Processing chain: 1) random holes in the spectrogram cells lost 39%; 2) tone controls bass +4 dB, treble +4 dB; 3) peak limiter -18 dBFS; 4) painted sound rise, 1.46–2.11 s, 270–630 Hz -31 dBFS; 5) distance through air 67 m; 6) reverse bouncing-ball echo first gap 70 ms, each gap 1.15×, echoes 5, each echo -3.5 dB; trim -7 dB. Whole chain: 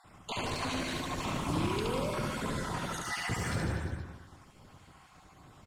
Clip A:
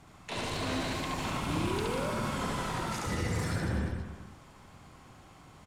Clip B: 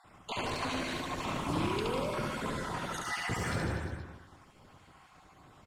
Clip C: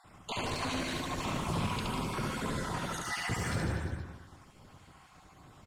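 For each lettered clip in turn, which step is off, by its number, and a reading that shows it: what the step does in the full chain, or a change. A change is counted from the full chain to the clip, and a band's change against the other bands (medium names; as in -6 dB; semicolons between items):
1, crest factor change -1.5 dB; 2, 8 kHz band -2.5 dB; 4, 500 Hz band -3.0 dB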